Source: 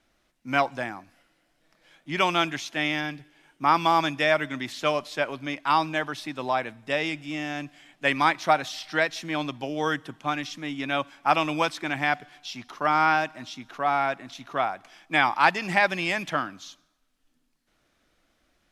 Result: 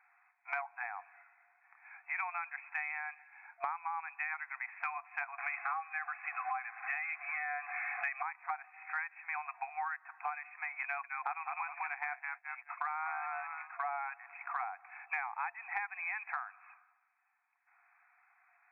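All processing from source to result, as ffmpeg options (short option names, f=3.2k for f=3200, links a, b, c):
-filter_complex "[0:a]asettb=1/sr,asplit=3[a][b][c];[a]atrim=end=5.384[d];[b]atrim=start=5.38:end=8.23,asetpts=PTS-STARTPTS,afade=t=in:d=0.004:c=qsin,afade=t=out:st=2.846:d=0.004:c=qsin,aeval=exprs='val(0)+0.5*0.0237*sgn(val(0))':c=same,asuperstop=centerf=930:order=20:qfactor=6.7,acontrast=28[e];[c]atrim=start=8.226[f];[d][e]acrossfade=d=0.004:c1=hsin:c2=qsin[g];[g][f]acrossfade=d=0.004:c1=qsin:c2=hsin,asettb=1/sr,asplit=3[h][i][j];[h]atrim=end=10.834[k];[i]atrim=start=10.83:end=13.89,asetpts=PTS-STARTPTS,afade=t=in:d=0.004:c=qsin,afade=t=out:st=3.056:d=0.004:c=qsin,highpass=f=680:p=1,asplit=5[l][m][n][o][p];[m]adelay=205,afreqshift=-56,volume=-5.5dB[q];[n]adelay=410,afreqshift=-112,volume=-16dB[r];[o]adelay=615,afreqshift=-168,volume=-26.4dB[s];[p]adelay=820,afreqshift=-224,volume=-36.9dB[t];[l][q][r][s][t]amix=inputs=5:normalize=0,atrim=end_sample=134946,agate=range=-33dB:threshold=-36dB:ratio=3:release=100:detection=peak[u];[j]atrim=start=13.886[v];[k][u]acrossfade=d=0.004:c1=hsin:c2=qsin[w];[w][v]acrossfade=d=0.004:c1=qsin:c2=hsin,afftfilt=real='re*between(b*sr/4096,690,2600)':imag='im*between(b*sr/4096,690,2600)':win_size=4096:overlap=0.75,acompressor=threshold=-41dB:ratio=10,volume=5.5dB"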